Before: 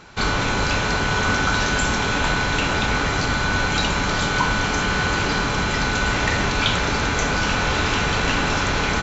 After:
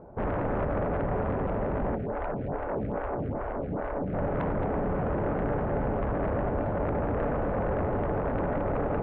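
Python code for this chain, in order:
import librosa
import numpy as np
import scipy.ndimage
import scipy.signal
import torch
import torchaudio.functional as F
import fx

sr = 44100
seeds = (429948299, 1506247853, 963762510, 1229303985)

y = fx.rider(x, sr, range_db=10, speed_s=0.5)
y = fx.ladder_lowpass(y, sr, hz=710.0, resonance_pct=50)
y = fx.fold_sine(y, sr, drive_db=7, ceiling_db=-20.5)
y = y + 10.0 ** (-7.0 / 20.0) * np.pad(y, (int(221 * sr / 1000.0), 0))[:len(y)]
y = fx.stagger_phaser(y, sr, hz=2.4, at=(1.95, 4.13), fade=0.02)
y = y * 10.0 ** (-5.0 / 20.0)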